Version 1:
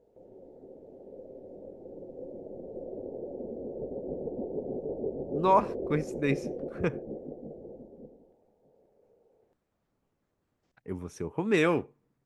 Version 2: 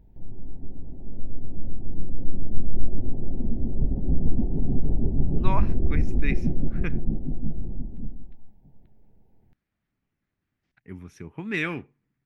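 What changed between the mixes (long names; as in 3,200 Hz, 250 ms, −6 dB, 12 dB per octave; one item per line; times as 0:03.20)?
background: remove resonant band-pass 500 Hz, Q 2.7
master: add graphic EQ with 10 bands 500 Hz −12 dB, 1,000 Hz −6 dB, 2,000 Hz +6 dB, 8,000 Hz −10 dB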